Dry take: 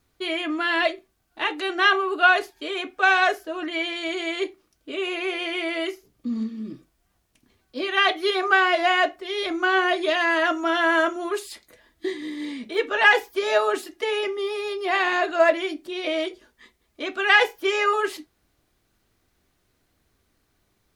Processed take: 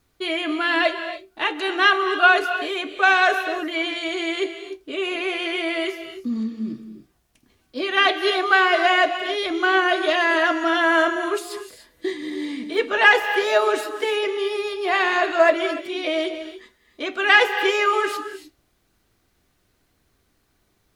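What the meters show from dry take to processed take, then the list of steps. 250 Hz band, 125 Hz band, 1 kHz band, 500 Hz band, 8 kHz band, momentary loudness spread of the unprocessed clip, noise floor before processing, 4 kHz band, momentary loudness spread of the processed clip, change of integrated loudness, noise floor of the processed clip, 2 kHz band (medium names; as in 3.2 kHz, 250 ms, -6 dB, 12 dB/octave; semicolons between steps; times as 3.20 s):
+2.5 dB, no reading, +2.5 dB, +2.5 dB, +2.5 dB, 14 LU, -70 dBFS, +2.5 dB, 14 LU, +2.5 dB, -67 dBFS, +2.5 dB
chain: gated-style reverb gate 320 ms rising, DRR 9.5 dB; trim +2 dB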